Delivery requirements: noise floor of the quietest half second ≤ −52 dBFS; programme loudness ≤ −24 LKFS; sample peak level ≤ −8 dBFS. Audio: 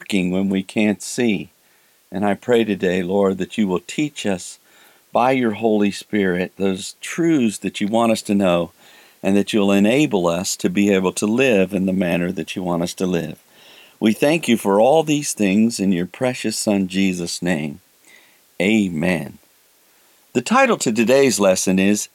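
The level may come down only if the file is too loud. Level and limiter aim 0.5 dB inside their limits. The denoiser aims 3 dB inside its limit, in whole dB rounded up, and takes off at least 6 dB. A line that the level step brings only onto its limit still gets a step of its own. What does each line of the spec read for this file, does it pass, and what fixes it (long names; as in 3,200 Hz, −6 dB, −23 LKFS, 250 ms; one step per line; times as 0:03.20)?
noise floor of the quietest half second −56 dBFS: in spec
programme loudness −18.5 LKFS: out of spec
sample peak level −4.0 dBFS: out of spec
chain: level −6 dB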